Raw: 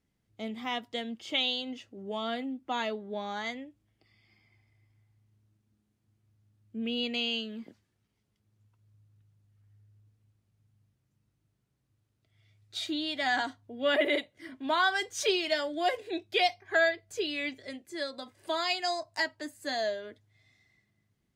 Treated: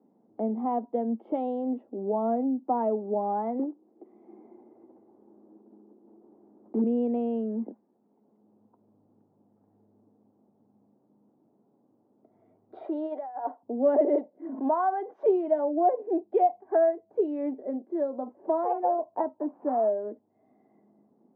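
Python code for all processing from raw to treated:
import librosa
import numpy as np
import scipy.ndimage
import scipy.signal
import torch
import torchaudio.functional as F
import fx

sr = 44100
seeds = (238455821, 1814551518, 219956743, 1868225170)

y = fx.chain(x, sr, fx.block_float(bits=3),
    fx.highpass(hz=160.0, slope=12),
    fx.peak_eq(hz=360.0, db=13.0, octaves=0.65), at=(3.59, 6.84))
y = fx.chain(y, sr, fx.highpass(hz=440.0, slope=24),
    fx.over_compress(threshold_db=-36.0, ratio=-0.5), at=(12.84, 13.63))
y = fx.chain(y, sr, fx.weighting(curve='A'),
    fx.pre_swell(db_per_s=140.0), at=(14.54, 15.23))
y = fx.chain(y, sr, fx.high_shelf(hz=6000.0, db=-6.0),
    fx.resample_linear(factor=8), at=(18.63, 19.91))
y = scipy.signal.sosfilt(scipy.signal.cheby1(3, 1.0, [220.0, 870.0], 'bandpass', fs=sr, output='sos'), y)
y = fx.band_squash(y, sr, depth_pct=40)
y = y * librosa.db_to_amplitude(8.5)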